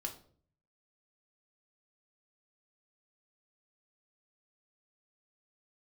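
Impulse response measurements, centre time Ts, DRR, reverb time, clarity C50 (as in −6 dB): 14 ms, 1.0 dB, 0.50 s, 11.5 dB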